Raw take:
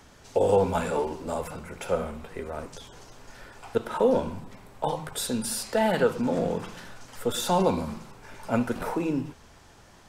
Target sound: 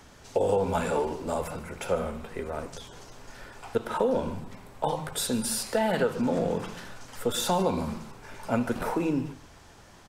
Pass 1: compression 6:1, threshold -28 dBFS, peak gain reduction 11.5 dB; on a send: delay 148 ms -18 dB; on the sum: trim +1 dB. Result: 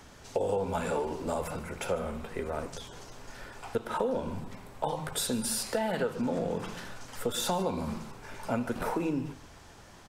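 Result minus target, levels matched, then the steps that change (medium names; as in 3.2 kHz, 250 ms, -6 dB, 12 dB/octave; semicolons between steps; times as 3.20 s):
compression: peak gain reduction +5 dB
change: compression 6:1, threshold -22 dBFS, peak gain reduction 6.5 dB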